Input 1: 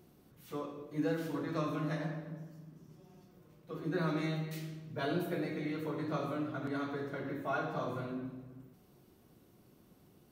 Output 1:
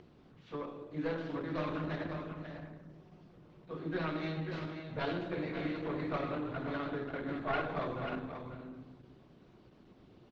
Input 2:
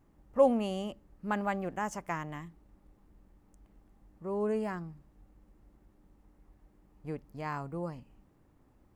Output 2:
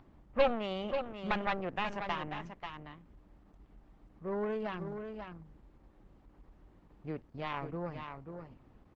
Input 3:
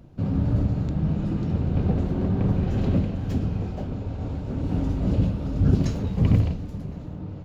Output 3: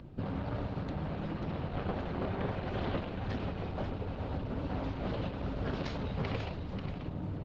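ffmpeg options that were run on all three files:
-filter_complex "[0:a]acrossover=split=500[link_01][link_02];[link_01]acompressor=threshold=-34dB:ratio=12[link_03];[link_02]aeval=exprs='0.158*(cos(1*acos(clip(val(0)/0.158,-1,1)))-cos(1*PI/2))+0.00126*(cos(4*acos(clip(val(0)/0.158,-1,1)))-cos(4*PI/2))+0.00501*(cos(5*acos(clip(val(0)/0.158,-1,1)))-cos(5*PI/2))+0.0501*(cos(6*acos(clip(val(0)/0.158,-1,1)))-cos(6*PI/2))':channel_layout=same[link_04];[link_03][link_04]amix=inputs=2:normalize=0,acompressor=mode=upward:threshold=-52dB:ratio=2.5,asoftclip=type=tanh:threshold=-17dB,lowpass=frequency=4200:width=0.5412,lowpass=frequency=4200:width=1.3066,aecho=1:1:538:0.422" -ar 48000 -c:a libopus -b:a 12k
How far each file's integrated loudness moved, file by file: −0.5, −3.0, −12.0 LU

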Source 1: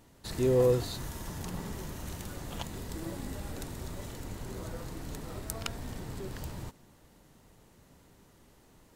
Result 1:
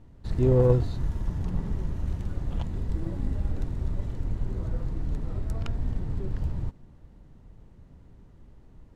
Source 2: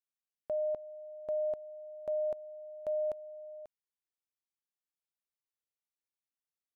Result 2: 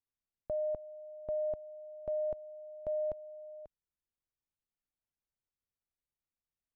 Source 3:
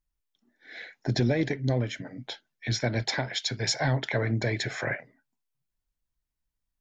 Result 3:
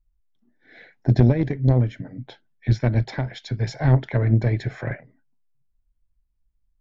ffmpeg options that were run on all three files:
-af "aemphasis=mode=reproduction:type=riaa,aeval=exprs='0.562*(cos(1*acos(clip(val(0)/0.562,-1,1)))-cos(1*PI/2))+0.0891*(cos(3*acos(clip(val(0)/0.562,-1,1)))-cos(3*PI/2))':channel_layout=same,volume=2.5dB"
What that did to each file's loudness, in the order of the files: +5.5, −1.5, +7.0 LU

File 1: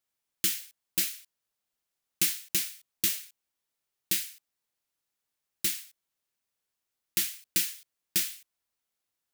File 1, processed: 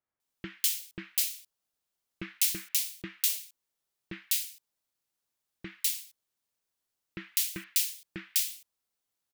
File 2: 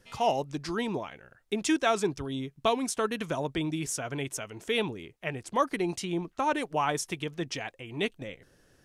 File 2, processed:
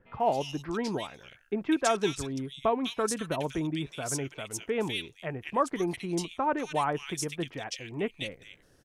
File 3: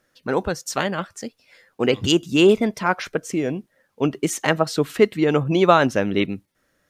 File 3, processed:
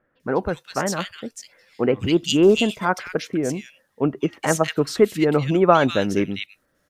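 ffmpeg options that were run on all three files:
-filter_complex "[0:a]acrossover=split=2100[link_01][link_02];[link_02]adelay=200[link_03];[link_01][link_03]amix=inputs=2:normalize=0,aeval=exprs='0.841*(cos(1*acos(clip(val(0)/0.841,-1,1)))-cos(1*PI/2))+0.00531*(cos(4*acos(clip(val(0)/0.841,-1,1)))-cos(4*PI/2))':channel_layout=same"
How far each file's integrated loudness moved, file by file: 0.0, −0.5, −0.5 LU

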